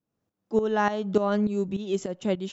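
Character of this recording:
tremolo saw up 3.4 Hz, depth 75%

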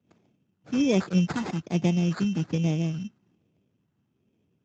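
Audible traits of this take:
phaser sweep stages 2, 1.2 Hz, lowest notch 550–1,500 Hz
aliases and images of a low sample rate 2,900 Hz, jitter 0%
Speex

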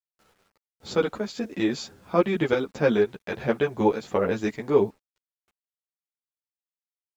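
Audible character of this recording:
chopped level 0.73 Hz, depth 60%, duty 85%
a quantiser's noise floor 10 bits, dither none
a shimmering, thickened sound

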